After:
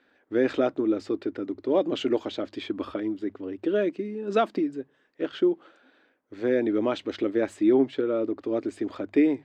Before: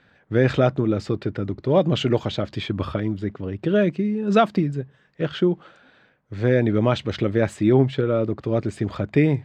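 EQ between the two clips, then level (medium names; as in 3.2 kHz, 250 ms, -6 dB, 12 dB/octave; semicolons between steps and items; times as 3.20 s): resonant low shelf 210 Hz -11 dB, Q 3; hum notches 50/100/150 Hz; -7.0 dB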